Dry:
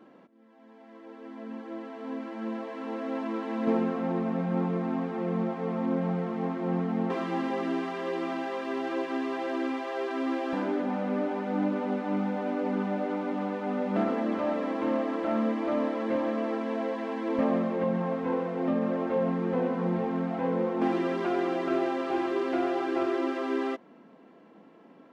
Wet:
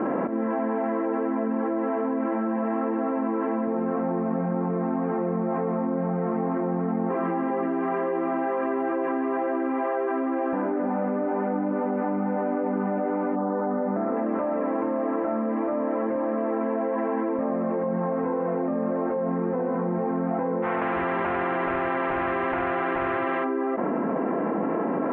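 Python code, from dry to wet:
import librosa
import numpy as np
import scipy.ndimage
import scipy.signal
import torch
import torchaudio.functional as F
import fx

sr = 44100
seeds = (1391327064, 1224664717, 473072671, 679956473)

y = fx.reverb_throw(x, sr, start_s=2.36, length_s=0.59, rt60_s=2.4, drr_db=-2.0)
y = fx.lowpass(y, sr, hz=fx.line((13.35, 1300.0), (14.15, 2400.0)), slope=24, at=(13.35, 14.15), fade=0.02)
y = fx.spectral_comp(y, sr, ratio=4.0, at=(20.62, 23.43), fade=0.02)
y = scipy.signal.sosfilt(scipy.signal.bessel(8, 1200.0, 'lowpass', norm='mag', fs=sr, output='sos'), y)
y = fx.low_shelf(y, sr, hz=310.0, db=-7.0)
y = fx.env_flatten(y, sr, amount_pct=100)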